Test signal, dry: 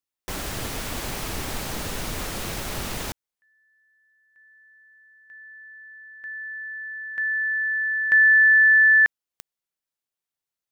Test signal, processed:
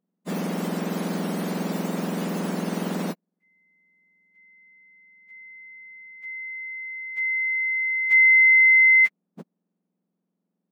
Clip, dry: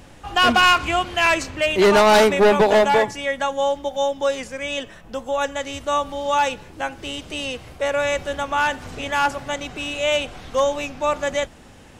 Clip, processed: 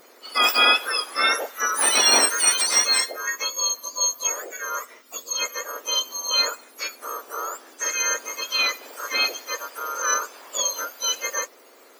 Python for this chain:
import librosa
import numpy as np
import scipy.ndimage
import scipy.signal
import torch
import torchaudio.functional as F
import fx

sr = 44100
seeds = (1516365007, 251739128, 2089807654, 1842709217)

y = fx.octave_mirror(x, sr, pivot_hz=1900.0)
y = fx.peak_eq(y, sr, hz=310.0, db=-3.5, octaves=0.78)